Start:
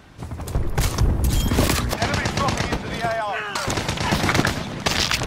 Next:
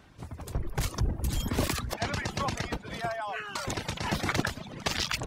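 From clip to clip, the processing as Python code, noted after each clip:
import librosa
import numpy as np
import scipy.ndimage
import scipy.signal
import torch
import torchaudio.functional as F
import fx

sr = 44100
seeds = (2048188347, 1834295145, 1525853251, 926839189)

y = fx.dereverb_blind(x, sr, rt60_s=0.71)
y = F.gain(torch.from_numpy(y), -8.5).numpy()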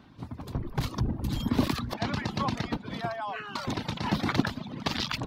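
y = fx.graphic_eq(x, sr, hz=(125, 250, 1000, 4000, 8000), db=(6, 12, 7, 8, -8))
y = F.gain(torch.from_numpy(y), -5.5).numpy()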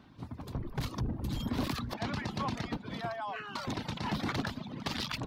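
y = 10.0 ** (-23.0 / 20.0) * np.tanh(x / 10.0 ** (-23.0 / 20.0))
y = F.gain(torch.from_numpy(y), -3.0).numpy()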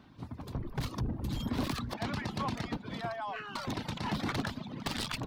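y = fx.tracing_dist(x, sr, depth_ms=0.052)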